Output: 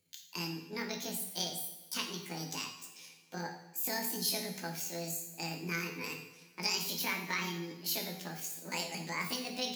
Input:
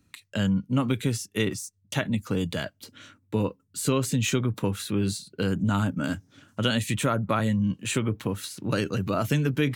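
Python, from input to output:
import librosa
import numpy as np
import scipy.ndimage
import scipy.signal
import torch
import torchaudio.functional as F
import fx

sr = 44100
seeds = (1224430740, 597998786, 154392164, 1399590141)

y = fx.pitch_heads(x, sr, semitones=9.0)
y = fx.tone_stack(y, sr, knobs='5-5-5')
y = fx.rev_double_slope(y, sr, seeds[0], early_s=0.79, late_s=2.7, knee_db=-19, drr_db=3.0)
y = y * 10.0 ** (2.5 / 20.0)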